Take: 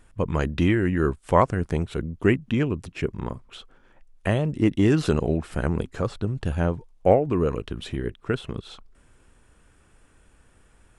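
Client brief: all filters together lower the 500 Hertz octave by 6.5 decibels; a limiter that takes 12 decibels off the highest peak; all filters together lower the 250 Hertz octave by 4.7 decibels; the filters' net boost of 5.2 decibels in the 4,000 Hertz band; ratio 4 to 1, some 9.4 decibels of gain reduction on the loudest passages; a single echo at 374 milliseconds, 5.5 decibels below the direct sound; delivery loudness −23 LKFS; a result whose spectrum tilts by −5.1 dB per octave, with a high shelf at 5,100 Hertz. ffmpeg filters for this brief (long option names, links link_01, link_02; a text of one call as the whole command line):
ffmpeg -i in.wav -af "equalizer=frequency=250:width_type=o:gain=-4.5,equalizer=frequency=500:width_type=o:gain=-7,equalizer=frequency=4000:width_type=o:gain=4,highshelf=frequency=5100:gain=7.5,acompressor=threshold=-27dB:ratio=4,alimiter=level_in=1.5dB:limit=-24dB:level=0:latency=1,volume=-1.5dB,aecho=1:1:374:0.531,volume=13.5dB" out.wav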